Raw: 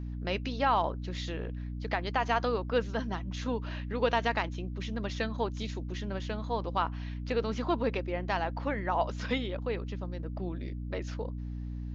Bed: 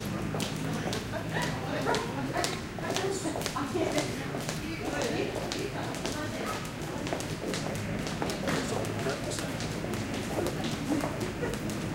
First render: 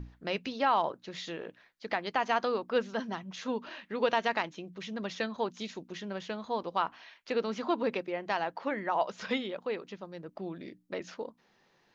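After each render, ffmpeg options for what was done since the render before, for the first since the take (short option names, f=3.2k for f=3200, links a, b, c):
-af "bandreject=f=60:t=h:w=6,bandreject=f=120:t=h:w=6,bandreject=f=180:t=h:w=6,bandreject=f=240:t=h:w=6,bandreject=f=300:t=h:w=6"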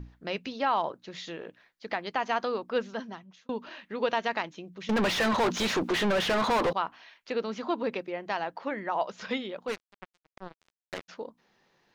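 -filter_complex "[0:a]asettb=1/sr,asplit=3[a][b][c];[a]atrim=end=4.894[d];[b]atrim=start=4.89:end=6.73,asetpts=PTS-STARTPTS,afade=t=in:d=0.004:c=qsin,afade=t=out:st=1.836:d=0.004:c=qsin,asplit=2[e][f];[f]highpass=f=720:p=1,volume=38dB,asoftclip=type=tanh:threshold=-17.5dB[g];[e][g]amix=inputs=2:normalize=0,lowpass=f=2.2k:p=1,volume=-6dB[h];[c]atrim=start=6.726[i];[d][h]acrossfade=d=0.004:c1=hsin:c2=qsin[j];[j][i]acrossfade=d=0.004:c1=qsin:c2=hsin,asplit=3[k][l][m];[k]afade=t=out:st=9.67:d=0.02[n];[l]acrusher=bits=4:mix=0:aa=0.5,afade=t=in:st=9.67:d=0.02,afade=t=out:st=11.08:d=0.02[o];[m]afade=t=in:st=11.08:d=0.02[p];[n][o][p]amix=inputs=3:normalize=0,asplit=2[q][r];[q]atrim=end=3.49,asetpts=PTS-STARTPTS,afade=t=out:st=2.87:d=0.62[s];[r]atrim=start=3.49,asetpts=PTS-STARTPTS,afade=t=in:d=0.004:c=hsin[t];[s][t]concat=n=2:v=0:a=1"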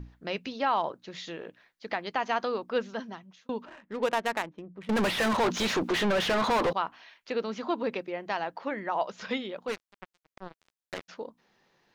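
-filter_complex "[0:a]asettb=1/sr,asplit=3[a][b][c];[a]atrim=end=3.654[d];[b]atrim=start=3.65:end=5.38,asetpts=PTS-STARTPTS,afade=t=in:d=0.004:c=qsin,afade=t=out:st=1.726:d=0.004:c=qsin,adynamicsmooth=sensitivity=6.5:basefreq=840[e];[c]atrim=start=5.376[f];[d][e]acrossfade=d=0.004:c1=hsin:c2=qsin[g];[g][f]acrossfade=d=0.004:c1=qsin:c2=hsin"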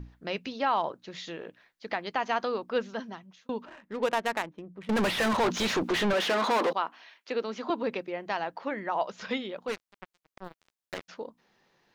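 -filter_complex "[0:a]asettb=1/sr,asplit=3[a][b][c];[a]atrim=end=6.134[d];[b]atrim=start=6.13:end=7.7,asetpts=PTS-STARTPTS,afade=t=in:d=0.004:c=qsin,afade=t=out:st=1.566:d=0.004:c=qsin,highpass=f=220:w=0.5412,highpass=f=220:w=1.3066[e];[c]atrim=start=7.696[f];[d][e]acrossfade=d=0.004:c1=hsin:c2=qsin[g];[g][f]acrossfade=d=0.004:c1=qsin:c2=hsin,asettb=1/sr,asplit=3[h][i][j];[h]atrim=end=10.444[k];[i]atrim=start=10.44:end=10.98,asetpts=PTS-STARTPTS,afade=t=in:d=0.004:c=qsin,afade=t=out:st=0.536:d=0.004:c=qsin,acrusher=bits=7:mode=log:mix=0:aa=0.000001[l];[j]atrim=start=10.976[m];[k][l]acrossfade=d=0.004:c1=hsin:c2=qsin[n];[n][m]acrossfade=d=0.004:c1=qsin:c2=hsin"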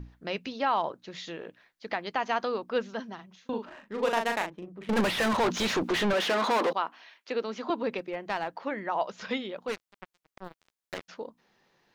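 -filter_complex "[0:a]asettb=1/sr,asplit=3[a][b][c];[a]atrim=end=3.154[d];[b]atrim=start=3.15:end=5.01,asetpts=PTS-STARTPTS,afade=t=in:d=0.004:c=qsin,afade=t=out:st=1.856:d=0.004:c=qsin,asplit=2[e][f];[f]adelay=39,volume=-4.5dB[g];[e][g]amix=inputs=2:normalize=0,atrim=end_sample=82026[h];[c]atrim=start=5.006[i];[d][h]acrossfade=d=0.004:c1=hsin:c2=qsin[j];[j][i]acrossfade=d=0.004:c1=qsin:c2=hsin,asettb=1/sr,asplit=3[k][l][m];[k]atrim=end=7.984[n];[l]atrim=start=7.98:end=8.5,asetpts=PTS-STARTPTS,afade=t=in:d=0.004:c=qsin,afade=t=out:st=0.516:d=0.004:c=qsin,aeval=exprs='clip(val(0),-1,0.0316)':c=same[o];[m]atrim=start=8.496[p];[n][o]acrossfade=d=0.004:c1=hsin:c2=qsin[q];[q][p]acrossfade=d=0.004:c1=qsin:c2=hsin"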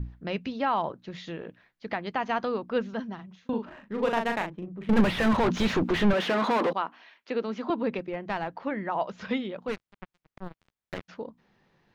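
-af "bass=f=250:g=10,treble=f=4k:g=-8"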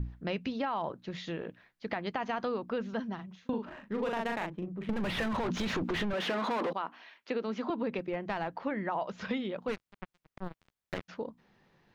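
-af "alimiter=limit=-20.5dB:level=0:latency=1:release=10,acompressor=threshold=-29dB:ratio=6"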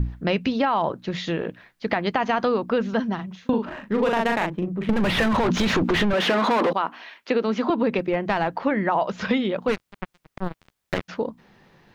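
-af "volume=11.5dB"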